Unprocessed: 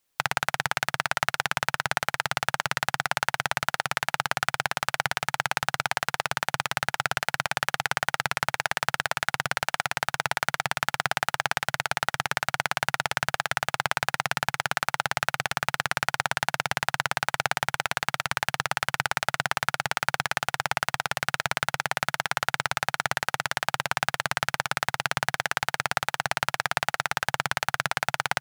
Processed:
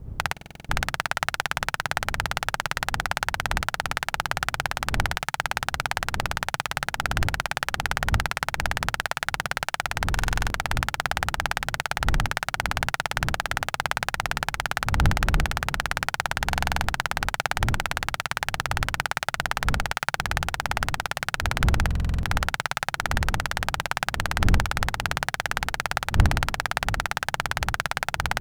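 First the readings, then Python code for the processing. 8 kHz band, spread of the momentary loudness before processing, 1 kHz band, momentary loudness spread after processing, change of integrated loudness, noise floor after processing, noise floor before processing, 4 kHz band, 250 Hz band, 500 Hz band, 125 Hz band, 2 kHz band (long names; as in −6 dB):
0.0 dB, 1 LU, 0.0 dB, 3 LU, +0.5 dB, −50 dBFS, −74 dBFS, 0.0 dB, +6.5 dB, 0.0 dB, +9.0 dB, 0.0 dB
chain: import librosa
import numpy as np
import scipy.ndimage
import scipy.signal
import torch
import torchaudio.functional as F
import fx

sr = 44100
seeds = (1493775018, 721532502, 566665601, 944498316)

y = fx.dmg_wind(x, sr, seeds[0], corner_hz=88.0, level_db=-30.0)
y = fx.buffer_glitch(y, sr, at_s=(0.32, 10.13, 16.47, 21.86), block=2048, repeats=7)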